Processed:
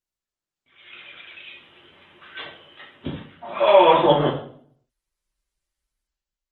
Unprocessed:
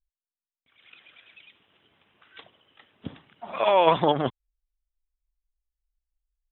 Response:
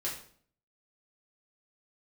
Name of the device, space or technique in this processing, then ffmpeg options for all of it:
far-field microphone of a smart speaker: -filter_complex "[1:a]atrim=start_sample=2205[s0];[0:a][s0]afir=irnorm=-1:irlink=0,highpass=f=99:p=1,dynaudnorm=f=200:g=7:m=3.55,volume=0.891" -ar 48000 -c:a libopus -b:a 20k

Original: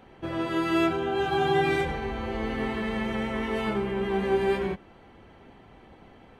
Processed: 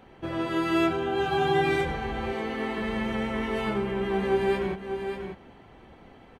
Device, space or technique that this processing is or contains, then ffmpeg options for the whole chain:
ducked delay: -filter_complex "[0:a]asettb=1/sr,asplit=3[s0][s1][s2];[s0]atrim=end=2.334[s3];[s1]atrim=start=2.33:end=2.78,asetpts=PTS-STARTPTS,afade=t=in:d=0.004:c=qsin,afade=t=out:st=0.446:d=0.004:c=qsin,highpass=220[s4];[s2]atrim=start=2.776[s5];[s3][s4]acrossfade=d=0.004:c1=hsin:c2=qsin[s6];[s6][s5]acrossfade=d=0.004:c1=qsin:c2=hsin,asplit=3[s7][s8][s9];[s8]adelay=590,volume=0.422[s10];[s9]apad=whole_len=307828[s11];[s10][s11]sidechaincompress=threshold=0.02:ratio=8:attack=21:release=286[s12];[s7][s12]amix=inputs=2:normalize=0"

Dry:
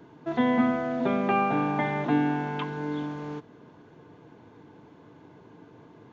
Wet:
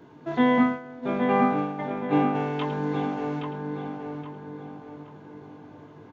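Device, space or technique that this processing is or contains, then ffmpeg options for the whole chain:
slapback doubling: -filter_complex "[0:a]asplit=3[s0][s1][s2];[s1]adelay=20,volume=0.562[s3];[s2]adelay=106,volume=0.282[s4];[s0][s3][s4]amix=inputs=3:normalize=0,asplit=3[s5][s6][s7];[s5]afade=t=out:st=0.62:d=0.02[s8];[s6]agate=range=0.0224:threshold=0.158:ratio=3:detection=peak,afade=t=in:st=0.62:d=0.02,afade=t=out:st=2.34:d=0.02[s9];[s7]afade=t=in:st=2.34:d=0.02[s10];[s8][s9][s10]amix=inputs=3:normalize=0,asplit=2[s11][s12];[s12]adelay=821,lowpass=f=2500:p=1,volume=0.631,asplit=2[s13][s14];[s14]adelay=821,lowpass=f=2500:p=1,volume=0.44,asplit=2[s15][s16];[s16]adelay=821,lowpass=f=2500:p=1,volume=0.44,asplit=2[s17][s18];[s18]adelay=821,lowpass=f=2500:p=1,volume=0.44,asplit=2[s19][s20];[s20]adelay=821,lowpass=f=2500:p=1,volume=0.44,asplit=2[s21][s22];[s22]adelay=821,lowpass=f=2500:p=1,volume=0.44[s23];[s11][s13][s15][s17][s19][s21][s23]amix=inputs=7:normalize=0"

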